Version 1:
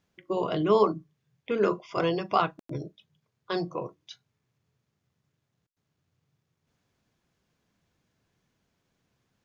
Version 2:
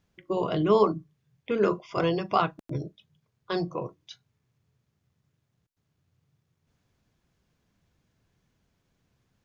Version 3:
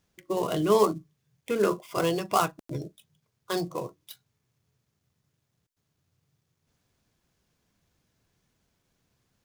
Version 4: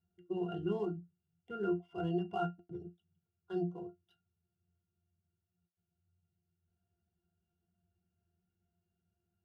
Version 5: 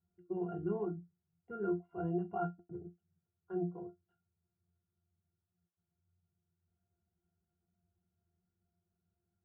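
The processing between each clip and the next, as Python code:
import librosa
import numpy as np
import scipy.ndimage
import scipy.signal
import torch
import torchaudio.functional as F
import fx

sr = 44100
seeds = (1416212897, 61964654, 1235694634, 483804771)

y1 = fx.low_shelf(x, sr, hz=110.0, db=10.0)
y2 = fx.dead_time(y1, sr, dead_ms=0.061)
y2 = fx.bass_treble(y2, sr, bass_db=-3, treble_db=6)
y3 = fx.octave_resonator(y2, sr, note='F', decay_s=0.15)
y4 = scipy.signal.sosfilt(scipy.signal.butter(4, 1600.0, 'lowpass', fs=sr, output='sos'), y3)
y4 = y4 * librosa.db_to_amplitude(-1.0)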